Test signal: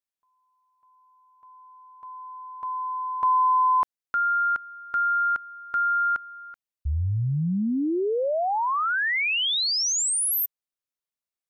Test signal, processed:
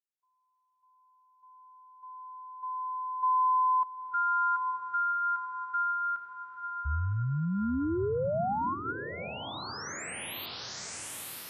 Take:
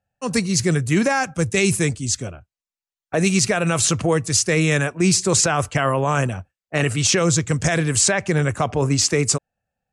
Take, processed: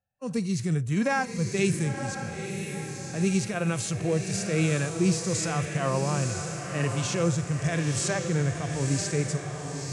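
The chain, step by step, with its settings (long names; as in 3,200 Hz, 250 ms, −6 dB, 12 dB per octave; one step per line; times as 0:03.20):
feedback delay with all-pass diffusion 971 ms, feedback 48%, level −7.5 dB
harmonic and percussive parts rebalanced percussive −14 dB
level −5.5 dB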